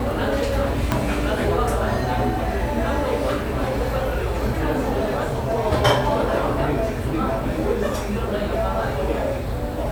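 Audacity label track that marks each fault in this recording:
0.920000	0.920000	click −6 dBFS

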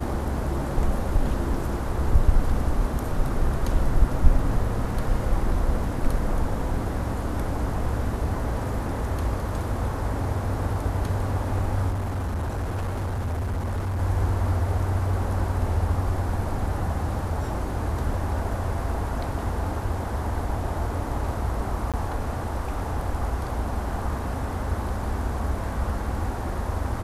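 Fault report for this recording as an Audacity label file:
11.900000	14.000000	clipping −24 dBFS
21.920000	21.940000	drop-out 17 ms

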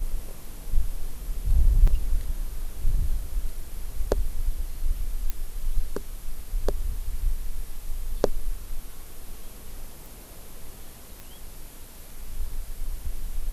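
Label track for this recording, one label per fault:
1.870000	1.880000	drop-out 5.1 ms
5.300000	5.300000	click −13 dBFS
10.060000	10.060000	click
11.200000	11.200000	click −24 dBFS

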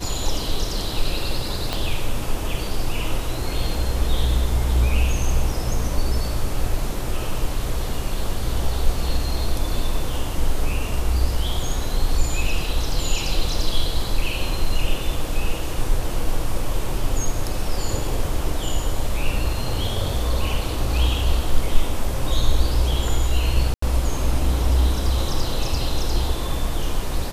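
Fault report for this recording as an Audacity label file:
1.730000	1.730000	click −10 dBFS
23.740000	23.820000	drop-out 84 ms

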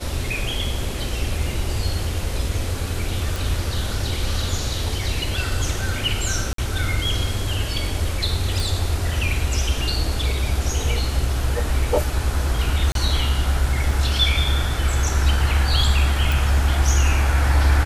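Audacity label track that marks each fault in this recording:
3.360000	3.360000	click
6.530000	6.580000	drop-out 53 ms
8.600000	8.600000	click
12.920000	12.950000	drop-out 32 ms
13.910000	13.910000	drop-out 2.5 ms
16.320000	16.320000	click

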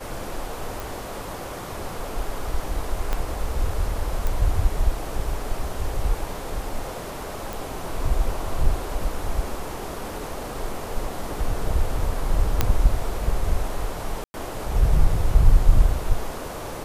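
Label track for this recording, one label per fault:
0.800000	0.800000	click
3.130000	3.130000	click −11 dBFS
4.270000	4.270000	click
7.530000	7.530000	click
12.610000	12.610000	click −4 dBFS
14.240000	14.340000	drop-out 100 ms

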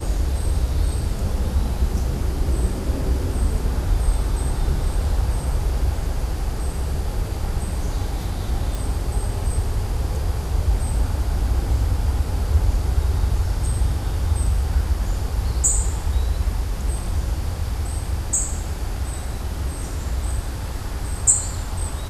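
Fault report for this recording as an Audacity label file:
8.750000	8.750000	click

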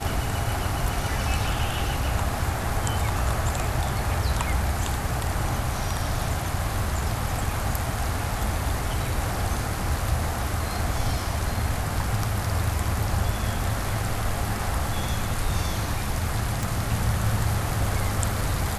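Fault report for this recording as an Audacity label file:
16.630000	16.630000	click

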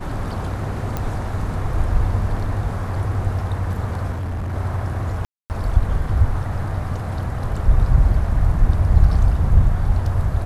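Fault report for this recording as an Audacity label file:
0.970000	0.970000	click −11 dBFS
4.110000	4.540000	clipping −22.5 dBFS
5.250000	5.500000	drop-out 249 ms

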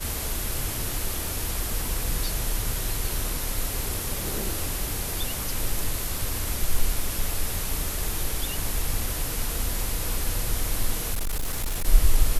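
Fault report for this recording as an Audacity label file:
11.130000	11.880000	clipping −23 dBFS

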